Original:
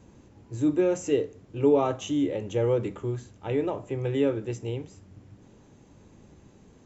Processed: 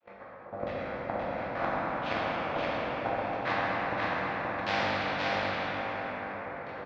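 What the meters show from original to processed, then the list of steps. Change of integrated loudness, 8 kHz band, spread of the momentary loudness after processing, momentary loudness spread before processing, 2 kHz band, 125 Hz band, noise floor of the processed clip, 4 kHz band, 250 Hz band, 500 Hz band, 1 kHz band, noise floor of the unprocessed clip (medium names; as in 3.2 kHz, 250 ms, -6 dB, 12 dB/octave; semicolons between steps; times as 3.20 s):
-4.5 dB, no reading, 8 LU, 12 LU, +13.5 dB, -9.5 dB, -47 dBFS, +5.5 dB, -10.5 dB, -7.0 dB, +8.0 dB, -55 dBFS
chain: vocoder on a held chord major triad, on G3; gate -53 dBFS, range -26 dB; dynamic bell 390 Hz, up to +6 dB, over -38 dBFS, Q 1.7; level rider gain up to 7 dB; in parallel at -6 dB: sample-rate reducer 2.7 kHz, jitter 20%; on the sum: inverted gate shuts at -14 dBFS, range -34 dB; full-wave rectifier; LFO low-pass saw down 1.5 Hz 400–3100 Hz; cabinet simulation 290–5100 Hz, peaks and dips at 410 Hz -10 dB, 890 Hz -3 dB, 3.1 kHz -9 dB; on a send: delay 524 ms -3 dB; on the sum: plate-style reverb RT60 3.8 s, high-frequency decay 0.6×, DRR -7.5 dB; spectrum-flattening compressor 2:1; trim -2 dB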